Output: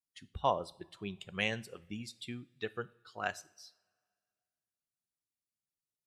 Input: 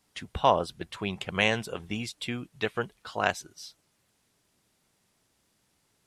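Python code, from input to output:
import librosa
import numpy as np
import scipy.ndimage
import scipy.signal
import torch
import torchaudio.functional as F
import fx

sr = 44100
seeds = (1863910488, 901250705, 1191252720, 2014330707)

y = fx.bin_expand(x, sr, power=1.5)
y = fx.rev_double_slope(y, sr, seeds[0], early_s=0.46, late_s=2.1, knee_db=-21, drr_db=15.0)
y = y * 10.0 ** (-7.0 / 20.0)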